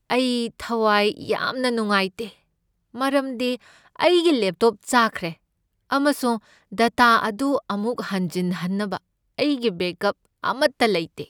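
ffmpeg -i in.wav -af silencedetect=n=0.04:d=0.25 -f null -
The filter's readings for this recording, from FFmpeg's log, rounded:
silence_start: 2.27
silence_end: 2.96 | silence_duration: 0.69
silence_start: 3.55
silence_end: 3.99 | silence_duration: 0.44
silence_start: 5.31
silence_end: 5.91 | silence_duration: 0.60
silence_start: 6.37
silence_end: 6.73 | silence_duration: 0.36
silence_start: 8.97
silence_end: 9.38 | silence_duration: 0.41
silence_start: 10.11
silence_end: 10.44 | silence_duration: 0.33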